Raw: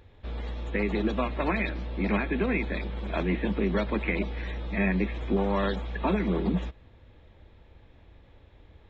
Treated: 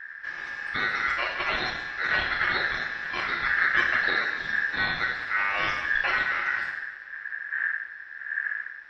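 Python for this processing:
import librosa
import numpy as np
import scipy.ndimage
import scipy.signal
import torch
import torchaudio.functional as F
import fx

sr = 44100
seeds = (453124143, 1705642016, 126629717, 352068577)

y = fx.dmg_wind(x, sr, seeds[0], corner_hz=98.0, level_db=-33.0)
y = fx.rev_double_slope(y, sr, seeds[1], early_s=0.85, late_s=3.1, knee_db=-18, drr_db=0.0)
y = y * np.sin(2.0 * np.pi * 1700.0 * np.arange(len(y)) / sr)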